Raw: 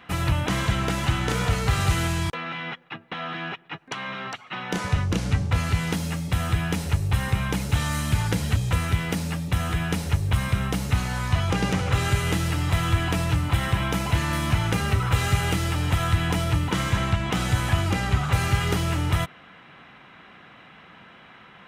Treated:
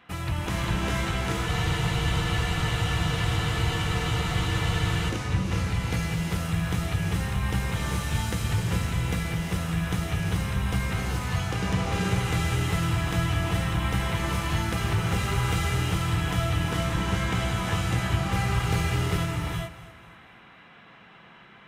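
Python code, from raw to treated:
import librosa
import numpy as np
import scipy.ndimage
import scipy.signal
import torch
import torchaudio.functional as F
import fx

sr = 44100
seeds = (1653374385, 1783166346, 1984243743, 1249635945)

y = fx.echo_feedback(x, sr, ms=247, feedback_pct=42, wet_db=-16.0)
y = fx.rev_gated(y, sr, seeds[0], gate_ms=450, shape='rising', drr_db=-2.5)
y = fx.spec_freeze(y, sr, seeds[1], at_s=1.48, hold_s=3.61)
y = y * librosa.db_to_amplitude(-7.0)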